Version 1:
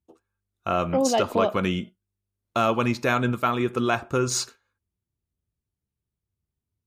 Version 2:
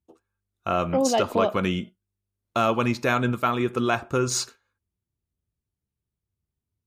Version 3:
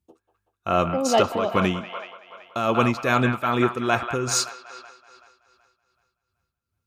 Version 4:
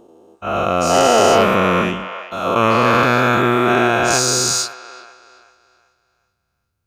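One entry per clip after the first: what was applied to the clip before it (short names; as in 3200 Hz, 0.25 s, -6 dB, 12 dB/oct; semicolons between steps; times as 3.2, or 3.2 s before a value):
nothing audible
band-limited delay 0.189 s, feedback 59%, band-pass 1500 Hz, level -6.5 dB; tremolo 2.5 Hz, depth 60%; gain +4 dB
spectral dilation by 0.48 s; gain -1 dB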